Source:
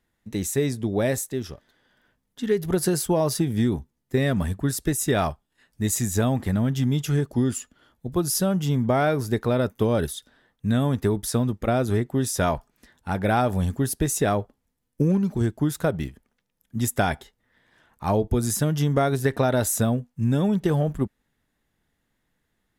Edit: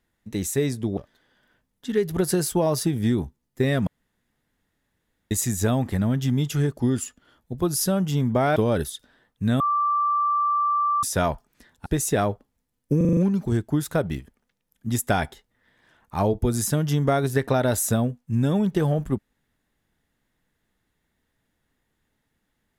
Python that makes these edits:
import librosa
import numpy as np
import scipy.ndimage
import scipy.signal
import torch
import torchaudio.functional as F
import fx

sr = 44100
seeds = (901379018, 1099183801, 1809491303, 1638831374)

y = fx.edit(x, sr, fx.cut(start_s=0.97, length_s=0.54),
    fx.room_tone_fill(start_s=4.41, length_s=1.44),
    fx.cut(start_s=9.1, length_s=0.69),
    fx.bleep(start_s=10.83, length_s=1.43, hz=1170.0, db=-19.0),
    fx.cut(start_s=13.09, length_s=0.86),
    fx.stutter(start_s=15.06, slice_s=0.04, count=6), tone=tone)